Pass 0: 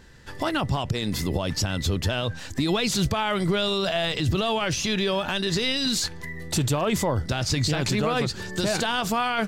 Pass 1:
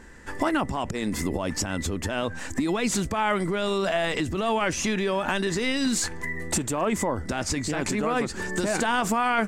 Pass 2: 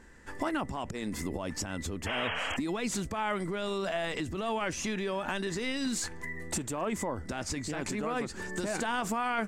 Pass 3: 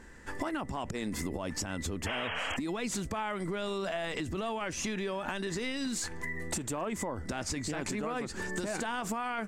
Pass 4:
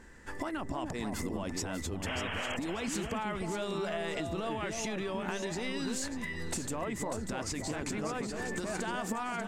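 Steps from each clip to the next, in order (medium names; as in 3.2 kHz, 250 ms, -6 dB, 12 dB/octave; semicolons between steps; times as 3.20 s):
tilt shelf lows +4.5 dB, about 880 Hz; compression, threshold -23 dBFS, peak gain reduction 8.5 dB; graphic EQ 125/250/1000/2000/4000/8000 Hz -12/+5/+5/+8/-6/+11 dB
painted sound noise, 2.06–2.57 s, 430–3300 Hz -27 dBFS; trim -7.5 dB
compression, threshold -34 dBFS, peak gain reduction 8 dB; trim +3 dB
echo whose repeats swap between lows and highs 296 ms, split 860 Hz, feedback 52%, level -3 dB; trim -2 dB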